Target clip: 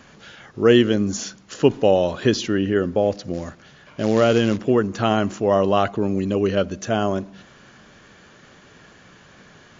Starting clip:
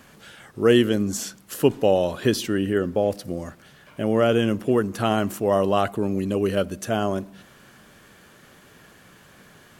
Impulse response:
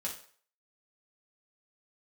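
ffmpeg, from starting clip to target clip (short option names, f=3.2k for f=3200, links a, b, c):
-filter_complex "[0:a]asplit=3[a][b][c];[a]afade=t=out:st=3.33:d=0.02[d];[b]acrusher=bits=4:mode=log:mix=0:aa=0.000001,afade=t=in:st=3.33:d=0.02,afade=t=out:st=4.57:d=0.02[e];[c]afade=t=in:st=4.57:d=0.02[f];[d][e][f]amix=inputs=3:normalize=0,volume=2.5dB" -ar 22050 -c:a mp2 -b:a 96k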